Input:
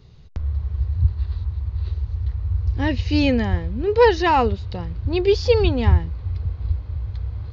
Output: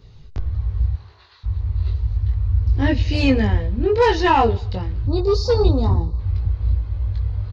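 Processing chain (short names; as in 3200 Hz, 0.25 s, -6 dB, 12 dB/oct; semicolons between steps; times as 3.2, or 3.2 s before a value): 0.93–1.43 HPF 400 Hz -> 1200 Hz 12 dB/oct; 5.07–6.19 spectral gain 1300–3600 Hz -20 dB; soft clip -10.5 dBFS, distortion -16 dB; chorus voices 4, 0.31 Hz, delay 20 ms, depth 1.9 ms; on a send: feedback echo 86 ms, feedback 51%, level -23 dB; on the sum: gain +5.5 dB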